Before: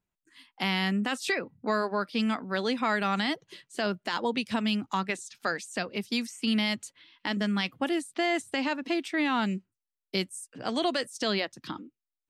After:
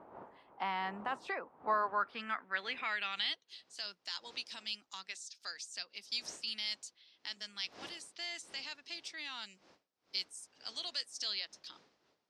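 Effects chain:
wind on the microphone 380 Hz −37 dBFS
band-pass filter sweep 970 Hz → 5,200 Hz, 0:01.71–0:03.74
level +1 dB

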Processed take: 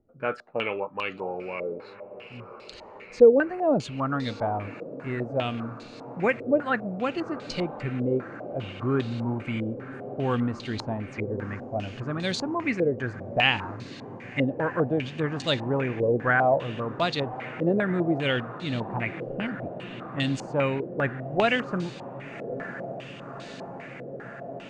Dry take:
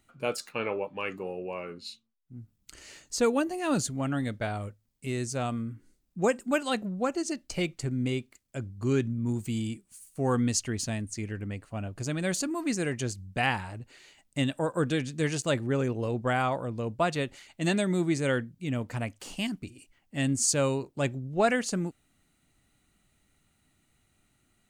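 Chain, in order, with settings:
feedback delay with all-pass diffusion 1,133 ms, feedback 79%, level −14.5 dB
low-pass on a step sequencer 5 Hz 500–4,000 Hz

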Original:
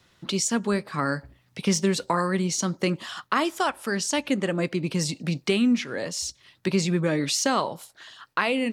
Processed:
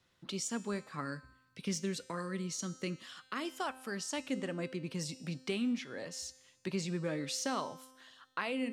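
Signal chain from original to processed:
0:01.01–0:03.45: parametric band 830 Hz −9 dB 0.97 octaves
tuned comb filter 260 Hz, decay 1.2 s, mix 70%
level −2.5 dB

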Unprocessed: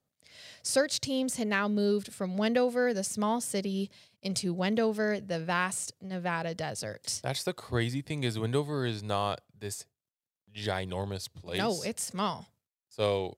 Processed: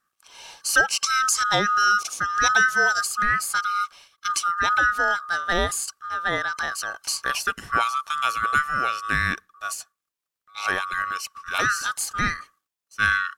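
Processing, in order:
neighbouring bands swapped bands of 1,000 Hz
0:01.04–0:03.01: parametric band 6,000 Hz +12 dB 0.87 octaves
level +7 dB

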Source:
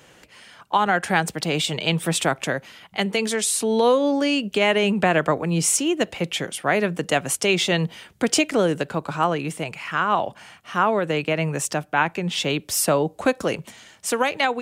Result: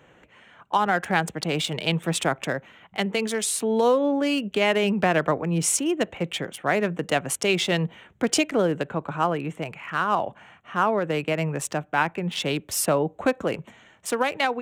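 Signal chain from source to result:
adaptive Wiener filter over 9 samples
level −2 dB

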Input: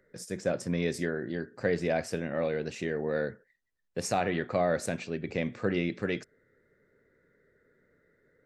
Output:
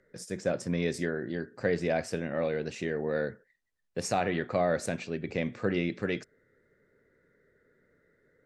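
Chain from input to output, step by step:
low-pass filter 11,000 Hz

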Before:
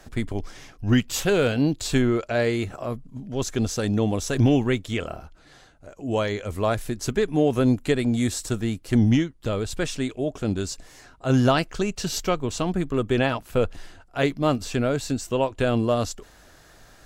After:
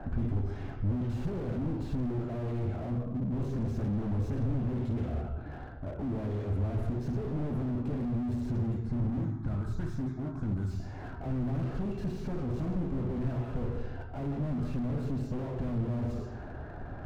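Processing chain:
gain into a clipping stage and back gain 21.5 dB
low-pass that shuts in the quiet parts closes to 1,500 Hz, open at −23 dBFS
downward compressor 3 to 1, threshold −44 dBFS, peak gain reduction 15 dB
0:08.70–0:10.71: phaser with its sweep stopped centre 1,200 Hz, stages 4
convolution reverb RT60 1.1 s, pre-delay 3 ms, DRR 2.5 dB
slew-rate limiting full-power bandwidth 6.8 Hz

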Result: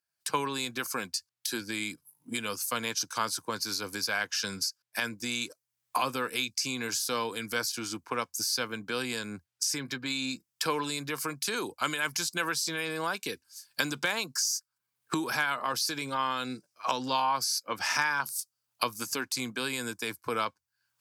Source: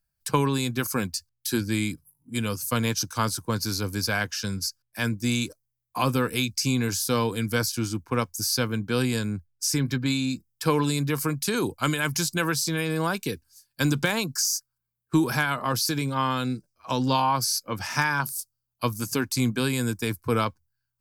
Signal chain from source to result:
camcorder AGC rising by 33 dB per second
meter weighting curve A
level −4 dB

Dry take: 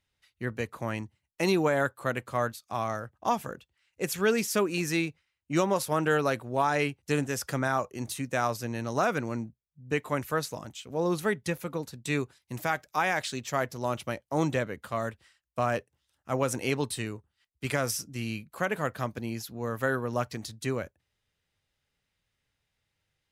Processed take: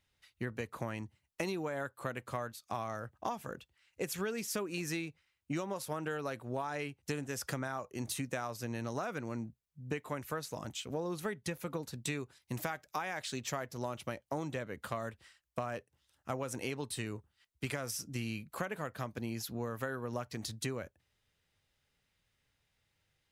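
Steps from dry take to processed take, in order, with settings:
downward compressor 12 to 1, threshold −35 dBFS, peak gain reduction 15.5 dB
level +1.5 dB

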